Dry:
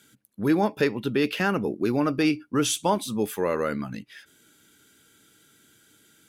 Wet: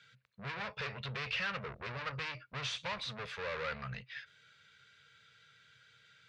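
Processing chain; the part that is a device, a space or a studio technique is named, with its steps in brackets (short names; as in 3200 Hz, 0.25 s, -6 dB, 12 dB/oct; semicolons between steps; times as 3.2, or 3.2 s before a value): scooped metal amplifier (tube stage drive 34 dB, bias 0.65; speaker cabinet 85–3800 Hz, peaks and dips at 130 Hz +8 dB, 230 Hz -3 dB, 320 Hz -7 dB, 500 Hz +7 dB, 800 Hz -7 dB, 3200 Hz -7 dB; passive tone stack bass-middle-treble 10-0-10); gain +10 dB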